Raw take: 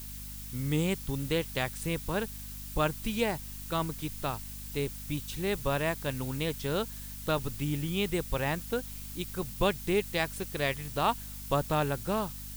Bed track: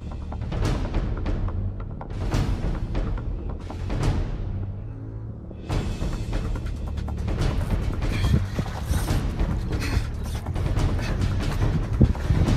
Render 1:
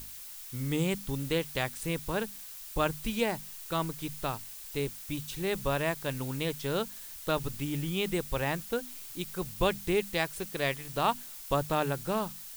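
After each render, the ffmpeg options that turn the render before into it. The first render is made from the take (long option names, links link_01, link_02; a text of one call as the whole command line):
ffmpeg -i in.wav -af "bandreject=frequency=50:width_type=h:width=6,bandreject=frequency=100:width_type=h:width=6,bandreject=frequency=150:width_type=h:width=6,bandreject=frequency=200:width_type=h:width=6,bandreject=frequency=250:width_type=h:width=6" out.wav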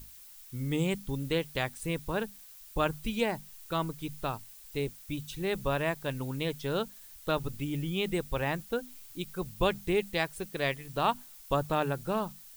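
ffmpeg -i in.wav -af "afftdn=noise_reduction=8:noise_floor=-45" out.wav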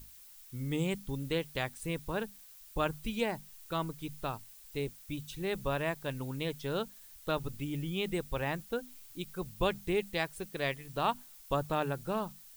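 ffmpeg -i in.wav -af "volume=-3dB" out.wav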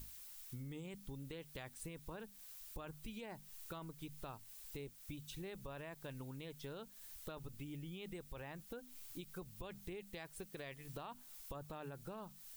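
ffmpeg -i in.wav -af "alimiter=level_in=3dB:limit=-24dB:level=0:latency=1:release=17,volume=-3dB,acompressor=threshold=-46dB:ratio=6" out.wav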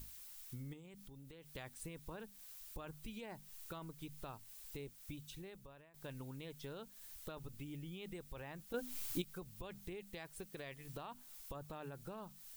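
ffmpeg -i in.wav -filter_complex "[0:a]asettb=1/sr,asplit=3[link_01][link_02][link_03];[link_01]atrim=end=0.734[link_04];[link_02]atrim=start=0.73:end=1.55,asetpts=PTS-STARTPTS,afade=type=in:duration=0.004:curve=qsin,afade=type=out:start_time=0.816:duration=0.004:curve=qsin,acompressor=threshold=-52dB:ratio=6:attack=3.2:release=140:knee=1:detection=peak[link_05];[link_03]atrim=start=1.546[link_06];[link_04][link_05]acrossfade=duration=0.004:curve1=hsin:curve2=qsin[link_07];[link_07][link_06]acrossfade=duration=0.004:curve1=qsin:curve2=hsin,asplit=4[link_08][link_09][link_10][link_11];[link_08]atrim=end=5.94,asetpts=PTS-STARTPTS,afade=type=out:start_time=5.12:duration=0.82:silence=0.0891251[link_12];[link_09]atrim=start=5.94:end=8.742,asetpts=PTS-STARTPTS,afade=type=in:duration=0.004:curve=hsin:silence=0.0891251[link_13];[link_10]atrim=start=8.738:end=9.222,asetpts=PTS-STARTPTS,volume=10dB[link_14];[link_11]atrim=start=9.218[link_15];[link_12][link_13]concat=n=2:v=0:a=1[link_16];[link_16][link_14]acrossfade=duration=0.004:curve1=hsin:curve2=hsin[link_17];[link_17][link_15]acrossfade=duration=0.004:curve1=hsin:curve2=hsin" out.wav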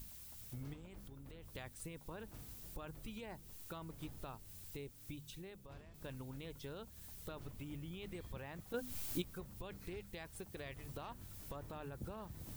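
ffmpeg -i in.wav -i bed.wav -filter_complex "[1:a]volume=-31.5dB[link_01];[0:a][link_01]amix=inputs=2:normalize=0" out.wav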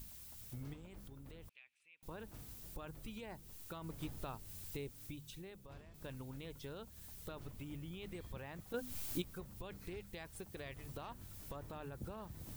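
ffmpeg -i in.wav -filter_complex "[0:a]asettb=1/sr,asplit=3[link_01][link_02][link_03];[link_01]atrim=end=1.494[link_04];[link_02]atrim=start=1.49:end=2.03,asetpts=PTS-STARTPTS,afade=type=in:duration=0.004:curve=qsin,afade=type=out:start_time=0.536:duration=0.004:curve=qsin,bandpass=frequency=2500:width_type=q:width=8.7[link_05];[link_03]atrim=start=2.026[link_06];[link_04][link_05]acrossfade=duration=0.004:curve1=hsin:curve2=qsin[link_07];[link_07][link_06]acrossfade=duration=0.004:curve1=qsin:curve2=hsin,asplit=3[link_08][link_09][link_10];[link_08]atrim=end=3.842[link_11];[link_09]atrim=start=3.838:end=5.072,asetpts=PTS-STARTPTS,volume=3.5dB[link_12];[link_10]atrim=start=5.068[link_13];[link_11][link_12]acrossfade=duration=0.004:curve1=hsin:curve2=hsin[link_14];[link_14][link_13]acrossfade=duration=0.004:curve1=hsin:curve2=hsin" out.wav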